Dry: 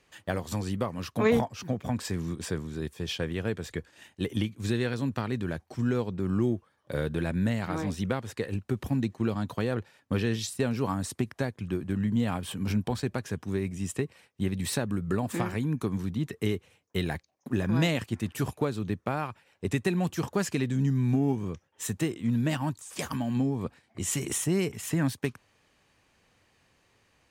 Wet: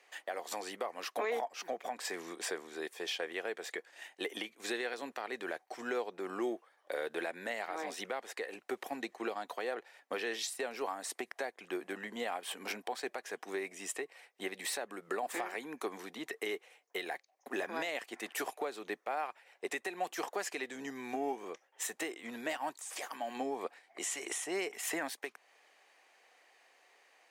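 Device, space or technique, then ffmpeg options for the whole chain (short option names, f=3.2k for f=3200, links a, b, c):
laptop speaker: -filter_complex "[0:a]highpass=f=400:w=0.5412,highpass=f=400:w=1.3066,equalizer=f=740:t=o:w=0.31:g=8,equalizer=f=2k:t=o:w=0.46:g=6,alimiter=level_in=2dB:limit=-24dB:level=0:latency=1:release=285,volume=-2dB,asettb=1/sr,asplit=3[a][b][c];[a]atrim=end=24.054[d];[b]atrim=start=24.05:end=24.73,asetpts=PTS-STARTPTS,afade=t=in:d=0.004:c=qsin,afade=t=out:st=0.676:d=0.004:c=qsin,lowpass=10k[e];[c]atrim=start=24.726[f];[d][e]acrossfade=d=0.004:c1=hsin:c2=qsin[g];[g][f]acrossfade=d=0.004:c1=qsin:c2=hsin"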